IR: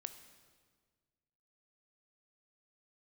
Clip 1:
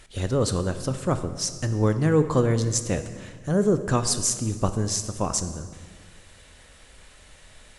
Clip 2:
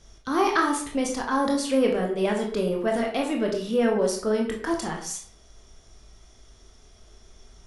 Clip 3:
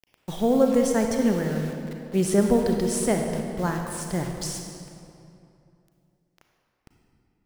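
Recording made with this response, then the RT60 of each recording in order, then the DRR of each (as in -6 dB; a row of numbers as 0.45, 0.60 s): 1; 1.6, 0.55, 2.7 s; 9.5, 0.0, 2.5 dB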